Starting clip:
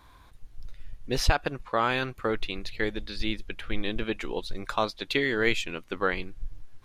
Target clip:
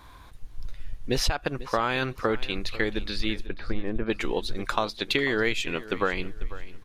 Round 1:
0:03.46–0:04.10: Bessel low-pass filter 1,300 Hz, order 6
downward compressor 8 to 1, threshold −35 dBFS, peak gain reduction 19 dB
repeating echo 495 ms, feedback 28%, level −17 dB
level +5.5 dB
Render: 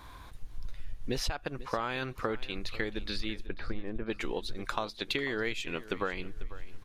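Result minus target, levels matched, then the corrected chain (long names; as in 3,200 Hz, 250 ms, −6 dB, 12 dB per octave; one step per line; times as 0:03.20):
downward compressor: peak gain reduction +8 dB
0:03.46–0:04.10: Bessel low-pass filter 1,300 Hz, order 6
downward compressor 8 to 1, threshold −26 dBFS, peak gain reduction 11.5 dB
repeating echo 495 ms, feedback 28%, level −17 dB
level +5.5 dB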